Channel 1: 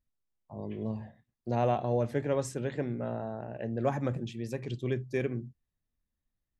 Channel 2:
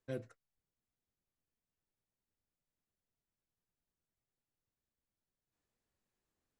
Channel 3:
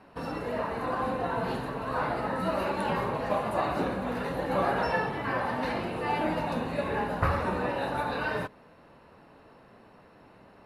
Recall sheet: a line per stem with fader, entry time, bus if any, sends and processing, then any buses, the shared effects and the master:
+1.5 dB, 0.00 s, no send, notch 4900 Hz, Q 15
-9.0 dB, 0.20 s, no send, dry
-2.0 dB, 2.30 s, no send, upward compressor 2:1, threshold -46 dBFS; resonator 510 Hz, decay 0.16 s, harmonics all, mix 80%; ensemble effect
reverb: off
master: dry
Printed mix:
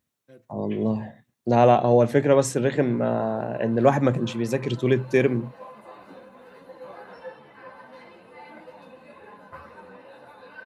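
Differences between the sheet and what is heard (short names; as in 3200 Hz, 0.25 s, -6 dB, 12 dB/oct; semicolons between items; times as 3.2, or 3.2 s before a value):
stem 1 +1.5 dB -> +12.0 dB; master: extra HPF 140 Hz 12 dB/oct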